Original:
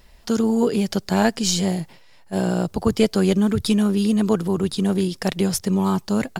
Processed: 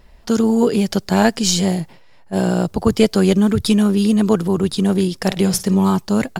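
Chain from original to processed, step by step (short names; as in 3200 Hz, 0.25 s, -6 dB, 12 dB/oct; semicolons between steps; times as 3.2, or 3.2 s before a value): 5.15–5.91 flutter echo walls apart 9 m, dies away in 0.23 s; mismatched tape noise reduction decoder only; gain +4 dB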